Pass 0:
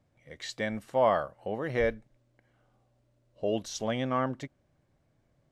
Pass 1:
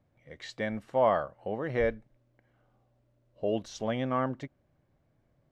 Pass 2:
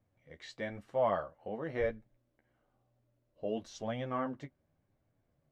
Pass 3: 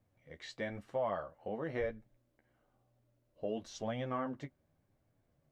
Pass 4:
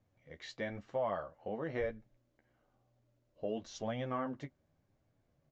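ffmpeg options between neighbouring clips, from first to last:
ffmpeg -i in.wav -af "lowpass=frequency=2700:poles=1" out.wav
ffmpeg -i in.wav -af "flanger=delay=9.2:depth=4.6:regen=-21:speed=1:shape=triangular,volume=-2.5dB" out.wav
ffmpeg -i in.wav -af "acompressor=threshold=-35dB:ratio=2.5,volume=1dB" out.wav
ffmpeg -i in.wav -af "aresample=16000,aresample=44100" out.wav

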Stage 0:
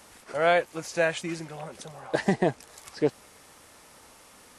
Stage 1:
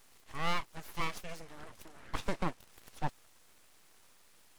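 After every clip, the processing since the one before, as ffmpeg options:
ffmpeg -i in.wav -af "aeval=exprs='abs(val(0))':channel_layout=same,volume=-8dB" out.wav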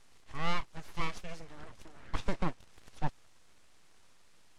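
ffmpeg -i in.wav -af "lowpass=8000,lowshelf=frequency=150:gain=7,volume=-1dB" out.wav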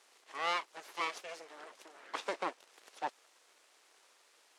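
ffmpeg -i in.wav -af "highpass=frequency=380:width=0.5412,highpass=frequency=380:width=1.3066,volume=2dB" out.wav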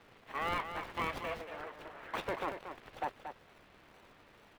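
ffmpeg -i in.wav -filter_complex "[0:a]acrossover=split=3400[link_01][link_02];[link_01]alimiter=level_in=8.5dB:limit=-24dB:level=0:latency=1:release=17,volume=-8.5dB[link_03];[link_02]acrusher=samples=36:mix=1:aa=0.000001:lfo=1:lforange=21.6:lforate=2.2[link_04];[link_03][link_04]amix=inputs=2:normalize=0,aecho=1:1:231:0.376,volume=6dB" out.wav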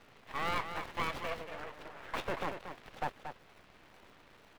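ffmpeg -i in.wav -af "aeval=exprs='if(lt(val(0),0),0.251*val(0),val(0))':channel_layout=same,volume=4dB" out.wav

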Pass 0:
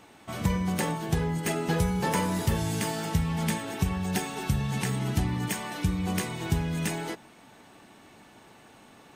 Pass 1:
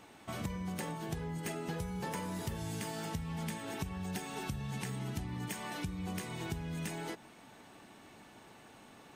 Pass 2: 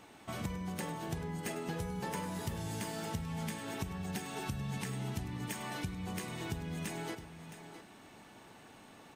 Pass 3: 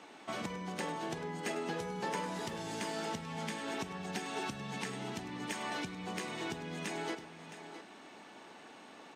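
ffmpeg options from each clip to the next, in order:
ffmpeg -i in.wav -af "acompressor=threshold=-34dB:ratio=4,volume=-3dB" out.wav
ffmpeg -i in.wav -af "aecho=1:1:101|665:0.2|0.251" out.wav
ffmpeg -i in.wav -filter_complex "[0:a]acrossover=split=200 7800:gain=0.0708 1 0.141[link_01][link_02][link_03];[link_01][link_02][link_03]amix=inputs=3:normalize=0,volume=3.5dB" out.wav

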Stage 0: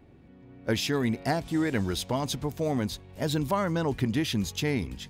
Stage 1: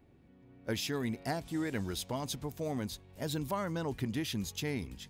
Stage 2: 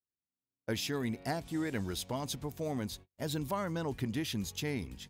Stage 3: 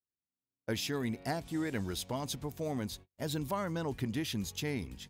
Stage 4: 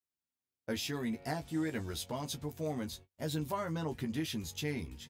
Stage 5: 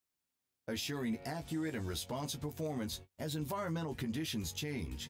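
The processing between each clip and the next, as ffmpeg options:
ffmpeg -i in.wav -af "highshelf=frequency=7200:gain=6.5,volume=-8dB" out.wav
ffmpeg -i in.wav -af "agate=range=-43dB:threshold=-49dB:ratio=16:detection=peak" out.wav
ffmpeg -i in.wav -af anull out.wav
ffmpeg -i in.wav -af "aecho=1:1:13|31:0.596|0.141,volume=-3dB" out.wav
ffmpeg -i in.wav -af "alimiter=level_in=10.5dB:limit=-24dB:level=0:latency=1:release=175,volume=-10.5dB,volume=5.5dB" out.wav

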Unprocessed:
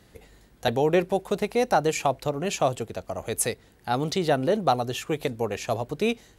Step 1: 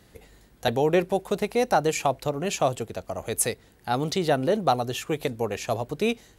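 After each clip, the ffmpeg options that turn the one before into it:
ffmpeg -i in.wav -af "highshelf=frequency=10000:gain=3.5" out.wav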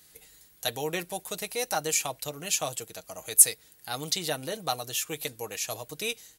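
ffmpeg -i in.wav -af "aecho=1:1:6.4:0.47,crystalizer=i=10:c=0,volume=-14dB" out.wav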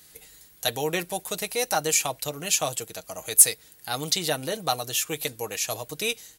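ffmpeg -i in.wav -af "acontrast=78,volume=-2.5dB" out.wav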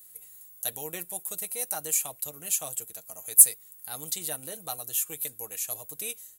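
ffmpeg -i in.wav -af "aexciter=amount=6.3:drive=4:freq=7300,volume=-13dB" out.wav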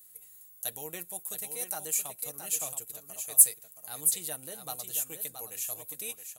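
ffmpeg -i in.wav -af "aecho=1:1:673:0.398,volume=-3.5dB" out.wav

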